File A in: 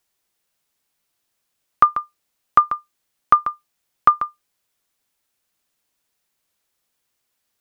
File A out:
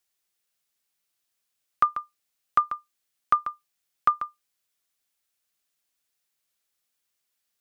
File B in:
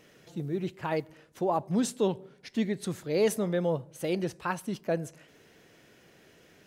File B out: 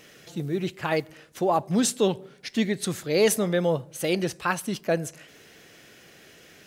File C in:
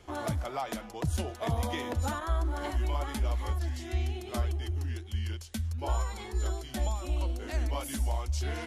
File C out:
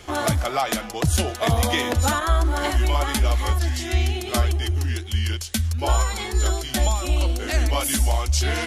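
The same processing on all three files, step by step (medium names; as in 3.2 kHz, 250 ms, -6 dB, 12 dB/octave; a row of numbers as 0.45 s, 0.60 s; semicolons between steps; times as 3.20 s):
tilt shelf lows -3.5 dB, about 1.3 kHz; band-stop 950 Hz, Q 15; peak normalisation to -9 dBFS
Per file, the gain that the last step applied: -7.5 dB, +7.0 dB, +13.0 dB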